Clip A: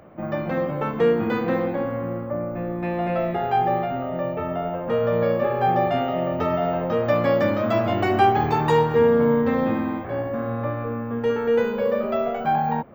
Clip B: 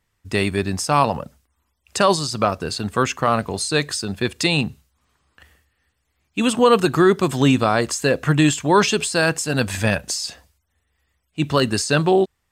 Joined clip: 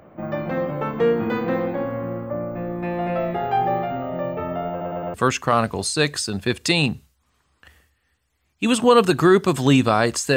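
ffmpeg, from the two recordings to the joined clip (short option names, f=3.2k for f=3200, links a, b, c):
-filter_complex "[0:a]apad=whole_dur=10.36,atrim=end=10.36,asplit=4[a][b][c][d];[a]atrim=end=4.812[e];[b]atrim=start=4.698:end=4.812[f];[c]atrim=start=4.698:end=4.812[g];[d]atrim=start=4.698:end=4.812[h];[1:a]atrim=start=2.888:end=8.11[i];[e][f]acrossfade=d=0.004:c1=hsin:c2=hsin[j];[j][g]acrossfade=d=0.004:c1=hsin:c2=hsin[k];[k][h]acrossfade=d=0.004:c1=hsin:c2=hsin[l];[l][i]acrossfade=d=0.004:c1=hsin:c2=hsin"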